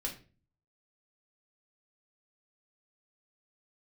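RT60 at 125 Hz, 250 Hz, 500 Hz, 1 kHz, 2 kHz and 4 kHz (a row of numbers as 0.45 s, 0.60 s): 0.70 s, 0.55 s, 0.40 s, 0.30 s, 0.35 s, 0.30 s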